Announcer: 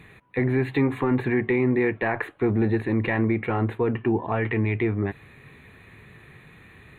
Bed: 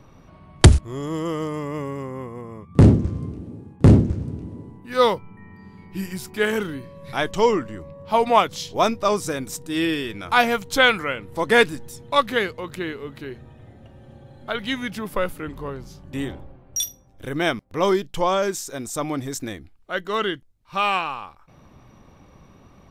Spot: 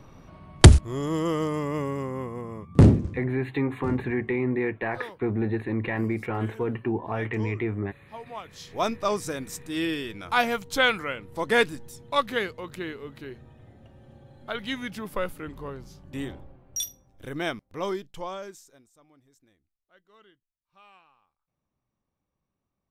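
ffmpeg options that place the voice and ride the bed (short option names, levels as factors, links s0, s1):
-filter_complex "[0:a]adelay=2800,volume=0.596[s0];[1:a]volume=7.08,afade=t=out:st=2.65:d=0.66:silence=0.0749894,afade=t=in:st=8.43:d=0.5:silence=0.141254,afade=t=out:st=17.03:d=1.87:silence=0.0398107[s1];[s0][s1]amix=inputs=2:normalize=0"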